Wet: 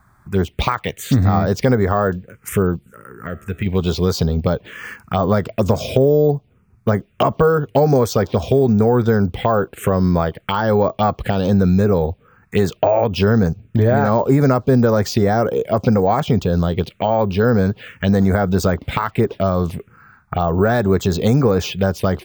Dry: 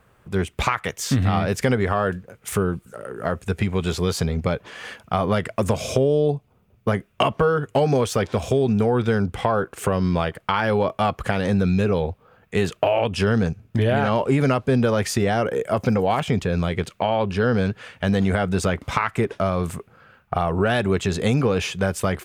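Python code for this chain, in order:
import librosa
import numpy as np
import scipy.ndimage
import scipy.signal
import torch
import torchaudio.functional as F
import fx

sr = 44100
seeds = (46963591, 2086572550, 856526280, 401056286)

y = fx.comb_fb(x, sr, f0_hz=71.0, decay_s=1.4, harmonics='all', damping=0.0, mix_pct=50, at=(2.76, 3.66))
y = fx.env_phaser(y, sr, low_hz=480.0, high_hz=2900.0, full_db=-16.5)
y = np.repeat(scipy.signal.resample_poly(y, 1, 2), 2)[:len(y)]
y = F.gain(torch.from_numpy(y), 5.5).numpy()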